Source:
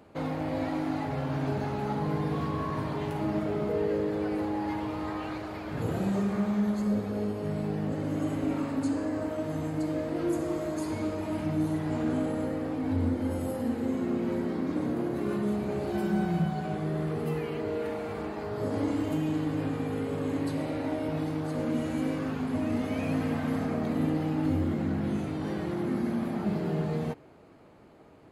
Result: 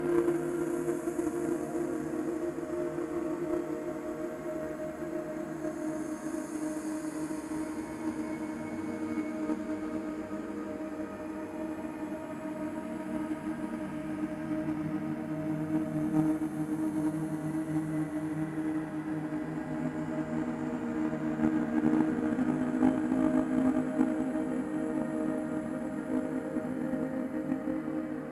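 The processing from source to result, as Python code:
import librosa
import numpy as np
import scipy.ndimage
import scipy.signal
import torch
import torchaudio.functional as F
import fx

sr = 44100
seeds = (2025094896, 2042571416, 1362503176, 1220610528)

y = fx.paulstretch(x, sr, seeds[0], factor=12.0, window_s=0.25, from_s=10.25)
y = fx.graphic_eq_15(y, sr, hz=(100, 250, 1600, 4000, 10000), db=(-12, 6, 6, -8, 3))
y = fx.cheby_harmonics(y, sr, harmonics=(3,), levels_db=(-15,), full_scale_db=-13.0)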